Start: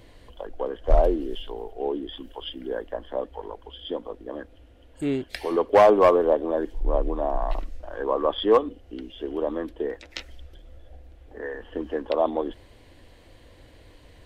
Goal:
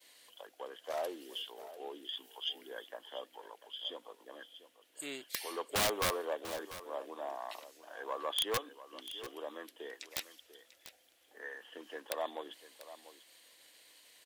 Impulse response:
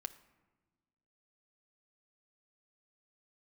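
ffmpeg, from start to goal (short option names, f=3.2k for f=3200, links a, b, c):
-af "agate=range=-33dB:threshold=-49dB:ratio=3:detection=peak,highpass=160,aeval=exprs='0.501*(cos(1*acos(clip(val(0)/0.501,-1,1)))-cos(1*PI/2))+0.02*(cos(5*acos(clip(val(0)/0.501,-1,1)))-cos(5*PI/2))+0.0112*(cos(6*acos(clip(val(0)/0.501,-1,1)))-cos(6*PI/2))':c=same,aderivative,aeval=exprs='(mod(23.7*val(0)+1,2)-1)/23.7':c=same,aecho=1:1:693:0.188,volume=4.5dB"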